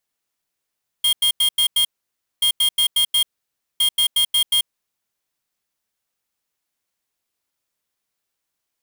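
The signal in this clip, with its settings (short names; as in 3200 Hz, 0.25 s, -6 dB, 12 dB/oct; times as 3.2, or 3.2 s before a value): beep pattern square 3230 Hz, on 0.09 s, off 0.09 s, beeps 5, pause 0.57 s, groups 3, -16.5 dBFS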